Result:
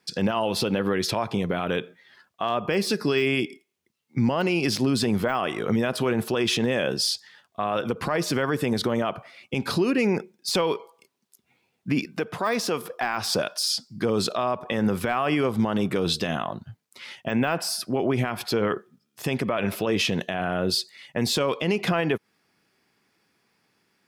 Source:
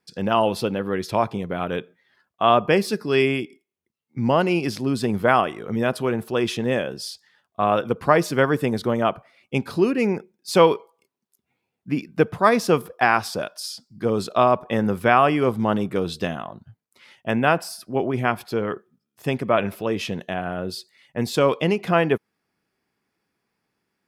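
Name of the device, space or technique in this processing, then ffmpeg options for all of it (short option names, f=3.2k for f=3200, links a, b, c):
broadcast voice chain: -filter_complex "[0:a]highpass=76,deesser=0.65,acompressor=threshold=-22dB:ratio=5,equalizer=f=4.4k:t=o:w=2.5:g=5,alimiter=limit=-20dB:level=0:latency=1:release=58,asettb=1/sr,asplit=3[a][b][c];[a]atrim=end=12.054[d];[b]atrim=start=12.05:end=12.93,asetpts=PTS-STARTPTS,afade=t=in:d=0.004:c=qsin,afade=t=out:st=0.876:d=0.004:c=qsin,highpass=f=280:p=1[e];[c]atrim=start=12.926[f];[d][e]acrossfade=d=0.004:c1=hsin:c2=qsin[g];[g][f]acrossfade=d=0.004:c1=qsin:c2=hsin,volume=6dB"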